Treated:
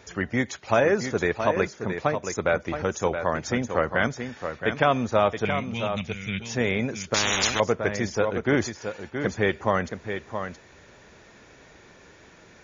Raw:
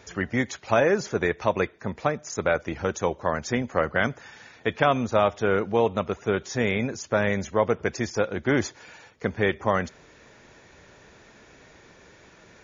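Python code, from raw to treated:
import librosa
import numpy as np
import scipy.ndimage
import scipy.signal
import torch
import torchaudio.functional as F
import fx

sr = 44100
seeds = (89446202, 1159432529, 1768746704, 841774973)

y = fx.curve_eq(x, sr, hz=(210.0, 370.0, 1400.0, 2200.0, 4600.0), db=(0, -22, -16, 8, 3), at=(5.45, 6.4))
y = y + 10.0 ** (-8.0 / 20.0) * np.pad(y, (int(672 * sr / 1000.0), 0))[:len(y)]
y = fx.spectral_comp(y, sr, ratio=10.0, at=(7.14, 7.6))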